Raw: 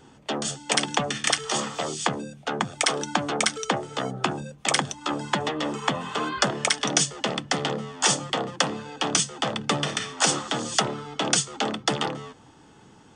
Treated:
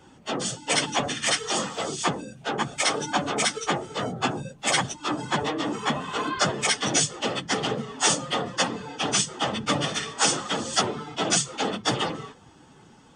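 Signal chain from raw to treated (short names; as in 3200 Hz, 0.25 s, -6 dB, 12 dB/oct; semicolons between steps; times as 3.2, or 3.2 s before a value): phase scrambler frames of 50 ms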